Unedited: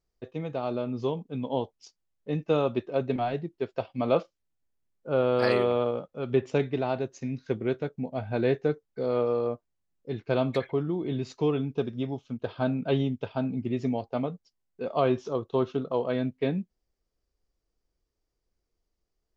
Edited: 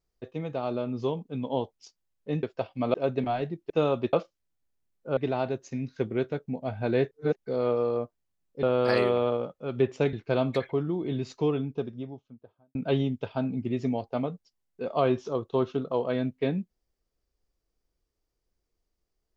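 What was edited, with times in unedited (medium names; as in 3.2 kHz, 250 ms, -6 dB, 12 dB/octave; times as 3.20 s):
2.43–2.86 s: swap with 3.62–4.13 s
5.17–6.67 s: move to 10.13 s
8.61–8.86 s: reverse
11.30–12.75 s: studio fade out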